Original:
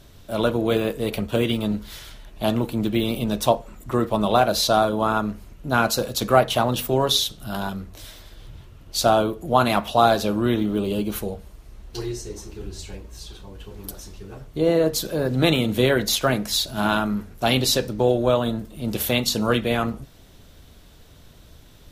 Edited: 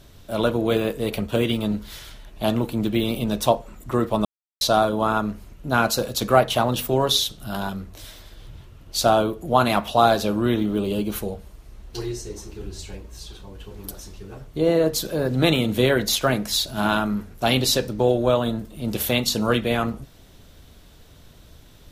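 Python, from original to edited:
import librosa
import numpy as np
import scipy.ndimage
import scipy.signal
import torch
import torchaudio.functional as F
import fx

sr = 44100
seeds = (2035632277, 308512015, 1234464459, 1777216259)

y = fx.edit(x, sr, fx.silence(start_s=4.25, length_s=0.36), tone=tone)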